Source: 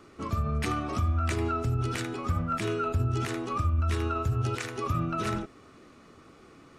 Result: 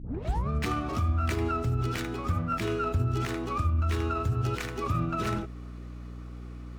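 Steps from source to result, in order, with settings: tape start-up on the opening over 0.49 s; hum 60 Hz, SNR 11 dB; sliding maximum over 3 samples

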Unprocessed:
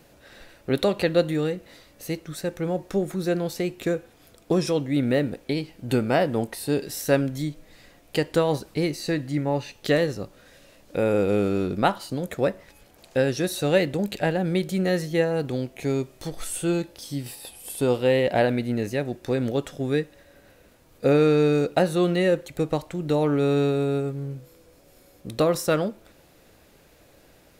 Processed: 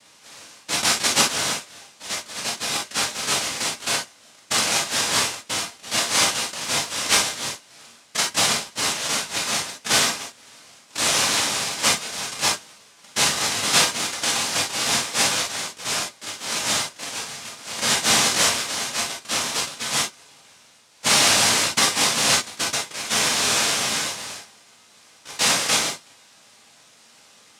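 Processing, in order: tilt EQ +2.5 dB/octave; noise-vocoded speech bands 1; gated-style reverb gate 80 ms flat, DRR -1.5 dB

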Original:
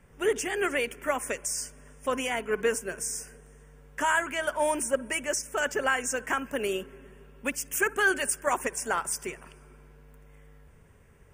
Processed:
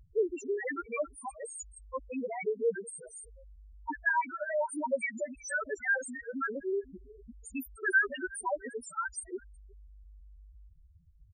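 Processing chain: time reversed locally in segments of 162 ms; dynamic bell 530 Hz, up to -4 dB, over -39 dBFS, Q 1; on a send: frequency-shifting echo 364 ms, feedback 48%, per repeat +36 Hz, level -21.5 dB; on the sum: loudest bins only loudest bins 2; trim +2.5 dB

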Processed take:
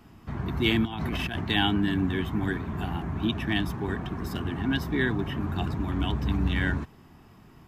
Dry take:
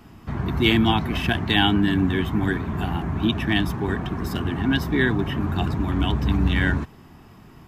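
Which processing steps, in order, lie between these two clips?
0.85–1.41 s: compressor with a negative ratio -26 dBFS, ratio -1; trim -5.5 dB

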